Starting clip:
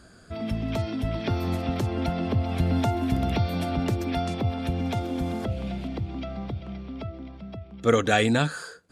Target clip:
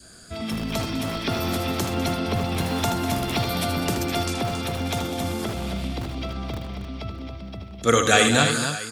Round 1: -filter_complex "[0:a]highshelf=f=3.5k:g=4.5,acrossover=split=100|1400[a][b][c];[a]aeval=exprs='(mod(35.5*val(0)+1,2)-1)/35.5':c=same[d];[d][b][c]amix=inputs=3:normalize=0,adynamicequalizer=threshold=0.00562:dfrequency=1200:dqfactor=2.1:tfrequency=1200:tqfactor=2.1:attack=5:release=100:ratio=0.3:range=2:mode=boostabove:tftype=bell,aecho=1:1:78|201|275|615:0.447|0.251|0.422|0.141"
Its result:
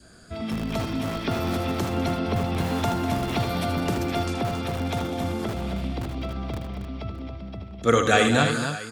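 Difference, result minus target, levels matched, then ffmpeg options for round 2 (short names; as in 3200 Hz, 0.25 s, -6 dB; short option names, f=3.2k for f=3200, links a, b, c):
8000 Hz band -7.0 dB
-filter_complex "[0:a]highshelf=f=3.5k:g=15.5,acrossover=split=100|1400[a][b][c];[a]aeval=exprs='(mod(35.5*val(0)+1,2)-1)/35.5':c=same[d];[d][b][c]amix=inputs=3:normalize=0,adynamicequalizer=threshold=0.00562:dfrequency=1200:dqfactor=2.1:tfrequency=1200:tqfactor=2.1:attack=5:release=100:ratio=0.3:range=2:mode=boostabove:tftype=bell,aecho=1:1:78|201|275|615:0.447|0.251|0.422|0.141"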